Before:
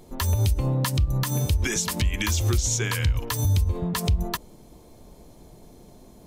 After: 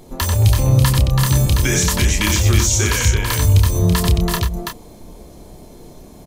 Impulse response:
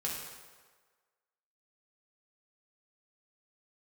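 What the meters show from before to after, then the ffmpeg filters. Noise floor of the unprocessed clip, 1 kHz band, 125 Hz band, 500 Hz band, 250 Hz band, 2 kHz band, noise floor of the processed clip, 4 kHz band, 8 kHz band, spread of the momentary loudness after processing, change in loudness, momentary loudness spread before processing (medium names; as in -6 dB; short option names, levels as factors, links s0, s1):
-50 dBFS, +8.5 dB, +9.0 dB, +9.0 dB, +9.0 dB, +9.0 dB, -41 dBFS, +9.0 dB, +9.0 dB, 6 LU, +9.0 dB, 3 LU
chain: -filter_complex "[0:a]asplit=2[s0][s1];[s1]adelay=29,volume=0.501[s2];[s0][s2]amix=inputs=2:normalize=0,aecho=1:1:91|331:0.531|0.596,volume=2"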